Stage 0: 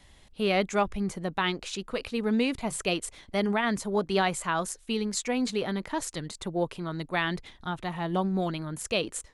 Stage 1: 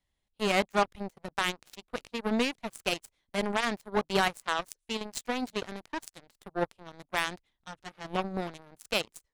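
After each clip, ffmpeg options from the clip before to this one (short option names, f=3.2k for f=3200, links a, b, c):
-af "aeval=exprs='0.237*(cos(1*acos(clip(val(0)/0.237,-1,1)))-cos(1*PI/2))+0.015*(cos(2*acos(clip(val(0)/0.237,-1,1)))-cos(2*PI/2))+0.00944*(cos(3*acos(clip(val(0)/0.237,-1,1)))-cos(3*PI/2))+0.00841*(cos(5*acos(clip(val(0)/0.237,-1,1)))-cos(5*PI/2))+0.0376*(cos(7*acos(clip(val(0)/0.237,-1,1)))-cos(7*PI/2))':c=same"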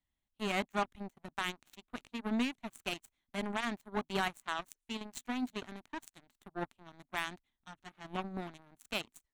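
-af "equalizer=f=250:t=o:w=0.33:g=6,equalizer=f=500:t=o:w=0.33:g=-11,equalizer=f=5k:t=o:w=0.33:g=-9,equalizer=f=10k:t=o:w=0.33:g=-4,volume=-6.5dB"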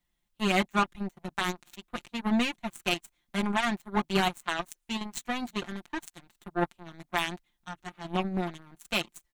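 -af "aecho=1:1:5.7:0.69,volume=6.5dB"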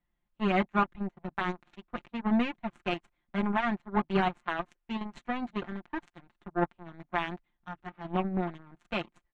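-af "lowpass=1.9k"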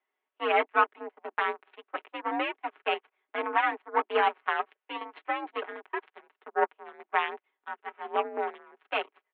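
-af "highpass=f=350:t=q:w=0.5412,highpass=f=350:t=q:w=1.307,lowpass=f=3.2k:t=q:w=0.5176,lowpass=f=3.2k:t=q:w=0.7071,lowpass=f=3.2k:t=q:w=1.932,afreqshift=62,volume=4.5dB"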